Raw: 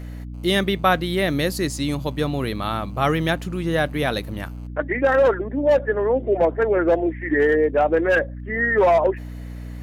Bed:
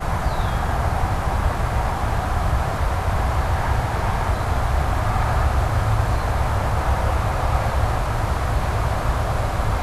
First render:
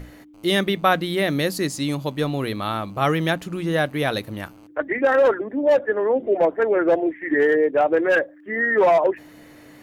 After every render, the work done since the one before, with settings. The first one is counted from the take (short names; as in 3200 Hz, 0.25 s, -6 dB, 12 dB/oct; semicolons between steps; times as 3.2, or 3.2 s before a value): notches 60/120/180/240 Hz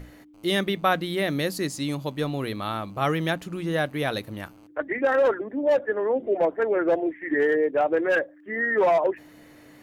gain -4 dB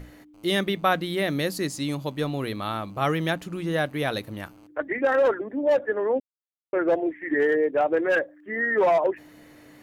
6.2–6.73 mute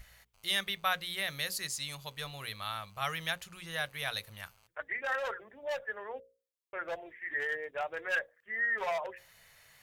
passive tone stack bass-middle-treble 10-0-10; notches 60/120/180/240/300/360/420/480/540 Hz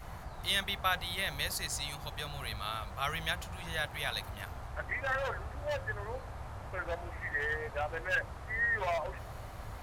add bed -23 dB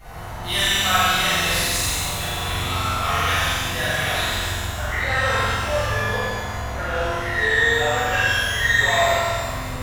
flutter echo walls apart 7.8 m, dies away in 1.3 s; shimmer reverb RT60 1.4 s, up +12 st, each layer -8 dB, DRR -9.5 dB